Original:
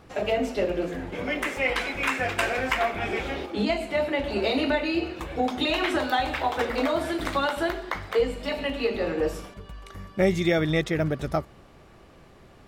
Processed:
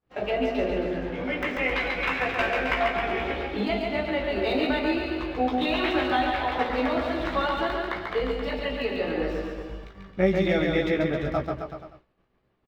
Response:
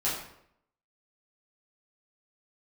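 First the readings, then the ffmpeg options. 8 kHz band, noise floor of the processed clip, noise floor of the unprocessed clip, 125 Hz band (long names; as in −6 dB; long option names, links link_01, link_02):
below −10 dB, −68 dBFS, −51 dBFS, −1.5 dB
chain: -filter_complex "[0:a]acrossover=split=4900[link_01][link_02];[link_01]asplit=2[link_03][link_04];[link_04]adelay=16,volume=-5dB[link_05];[link_03][link_05]amix=inputs=2:normalize=0[link_06];[link_02]acrusher=samples=38:mix=1:aa=0.000001[link_07];[link_06][link_07]amix=inputs=2:normalize=0,aecho=1:1:140|266|379.4|481.5|573.3:0.631|0.398|0.251|0.158|0.1,agate=range=-33dB:threshold=-35dB:ratio=3:detection=peak,volume=-3dB"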